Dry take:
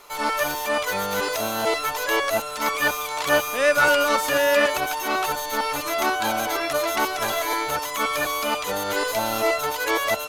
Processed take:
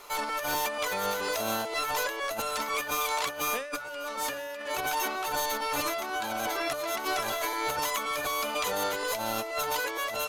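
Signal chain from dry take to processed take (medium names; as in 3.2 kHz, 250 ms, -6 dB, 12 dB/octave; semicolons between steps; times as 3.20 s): hum notches 50/100/150/200/250/300 Hz; compressor with a negative ratio -28 dBFS, ratio -1; trim -4 dB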